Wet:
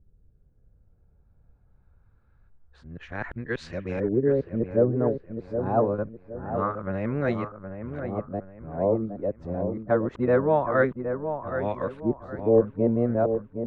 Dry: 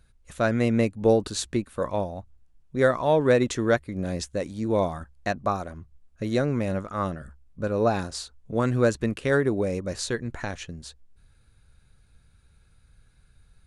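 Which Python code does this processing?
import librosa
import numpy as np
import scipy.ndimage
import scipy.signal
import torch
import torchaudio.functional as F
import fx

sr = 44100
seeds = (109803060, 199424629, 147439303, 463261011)

y = np.flip(x).copy()
y = fx.filter_lfo_lowpass(y, sr, shape='saw_up', hz=0.25, low_hz=380.0, high_hz=2800.0, q=1.5)
y = fx.echo_wet_lowpass(y, sr, ms=767, feedback_pct=34, hz=1800.0, wet_db=-8.0)
y = y * librosa.db_to_amplitude(-2.5)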